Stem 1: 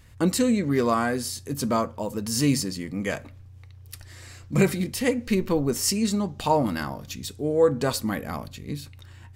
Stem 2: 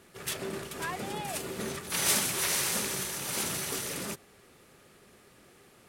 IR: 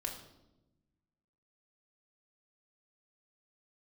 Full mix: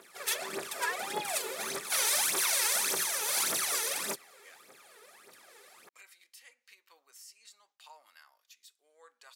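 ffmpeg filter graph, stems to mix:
-filter_complex "[0:a]highpass=1.5k,agate=range=-33dB:threshold=-51dB:ratio=3:detection=peak,alimiter=limit=-22dB:level=0:latency=1:release=226,adelay=1400,volume=-19.5dB[a];[1:a]aphaser=in_gain=1:out_gain=1:delay=2.4:decay=0.71:speed=1.7:type=triangular,alimiter=limit=-19.5dB:level=0:latency=1:release=22,bandreject=f=2.9k:w=13,volume=1dB[b];[a][b]amix=inputs=2:normalize=0,highpass=530"

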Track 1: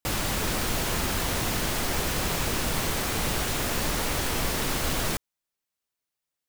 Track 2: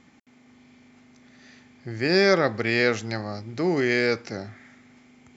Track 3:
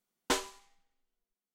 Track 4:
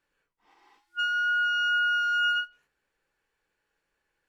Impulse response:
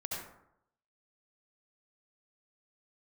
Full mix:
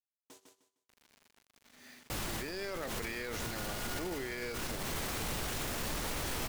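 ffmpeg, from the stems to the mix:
-filter_complex "[0:a]asoftclip=type=tanh:threshold=-21dB,adelay=2050,volume=-1dB[a];[1:a]agate=range=-33dB:threshold=-49dB:ratio=3:detection=peak,highpass=f=310:p=1,acrusher=bits=8:mix=0:aa=0.000001,adelay=400,volume=1dB[b];[2:a]equalizer=f=1.6k:w=0.46:g=-13.5,aeval=exprs='0.0944*(cos(1*acos(clip(val(0)/0.0944,-1,1)))-cos(1*PI/2))+0.0211*(cos(8*acos(clip(val(0)/0.0944,-1,1)))-cos(8*PI/2))':c=same,highpass=130,volume=-19dB,asplit=2[c][d];[d]volume=-5.5dB[e];[3:a]adelay=2200,volume=-16.5dB[f];[e]aecho=0:1:153|306|459|612:1|0.25|0.0625|0.0156[g];[a][b][c][f][g]amix=inputs=5:normalize=0,aeval=exprs='(tanh(2.51*val(0)+0.7)-tanh(0.7))/2.51':c=same,alimiter=level_in=5.5dB:limit=-24dB:level=0:latency=1,volume=-5.5dB"

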